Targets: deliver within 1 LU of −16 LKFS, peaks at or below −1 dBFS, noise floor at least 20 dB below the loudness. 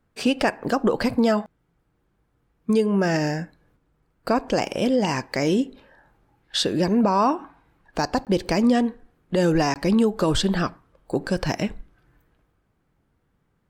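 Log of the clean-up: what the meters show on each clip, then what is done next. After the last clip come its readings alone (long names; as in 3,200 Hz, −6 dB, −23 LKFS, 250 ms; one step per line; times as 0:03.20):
number of dropouts 2; longest dropout 18 ms; integrated loudness −23.0 LKFS; sample peak −9.0 dBFS; target loudness −16.0 LKFS
→ repair the gap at 0:08.25/0:09.74, 18 ms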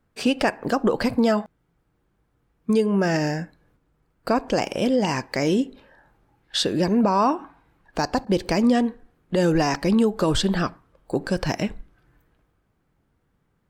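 number of dropouts 0; integrated loudness −23.0 LKFS; sample peak −9.0 dBFS; target loudness −16.0 LKFS
→ level +7 dB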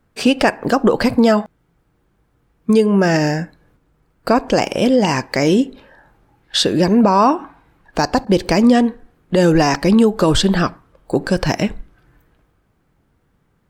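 integrated loudness −16.0 LKFS; sample peak −2.0 dBFS; background noise floor −62 dBFS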